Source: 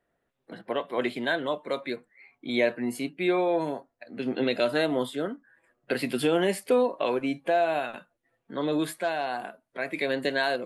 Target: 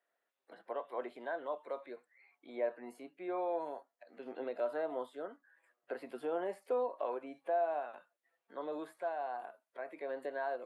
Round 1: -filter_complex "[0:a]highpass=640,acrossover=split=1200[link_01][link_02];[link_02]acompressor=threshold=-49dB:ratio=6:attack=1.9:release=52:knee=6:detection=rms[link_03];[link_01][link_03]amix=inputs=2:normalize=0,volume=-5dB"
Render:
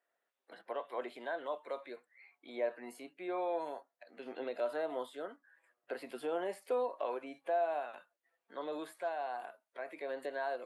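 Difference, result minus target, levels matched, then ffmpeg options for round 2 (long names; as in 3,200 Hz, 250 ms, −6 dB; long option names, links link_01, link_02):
downward compressor: peak gain reduction −8.5 dB
-filter_complex "[0:a]highpass=640,acrossover=split=1200[link_01][link_02];[link_02]acompressor=threshold=-59dB:ratio=6:attack=1.9:release=52:knee=6:detection=rms[link_03];[link_01][link_03]amix=inputs=2:normalize=0,volume=-5dB"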